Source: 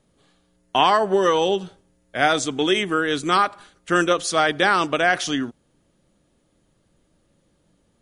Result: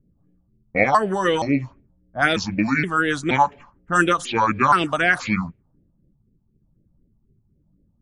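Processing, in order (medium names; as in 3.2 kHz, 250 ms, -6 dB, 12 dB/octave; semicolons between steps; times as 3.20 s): pitch shift switched off and on -6 st, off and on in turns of 472 ms; phase shifter stages 4, 4 Hz, lowest notch 370–1100 Hz; level-controlled noise filter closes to 330 Hz, open at -21 dBFS; trim +4.5 dB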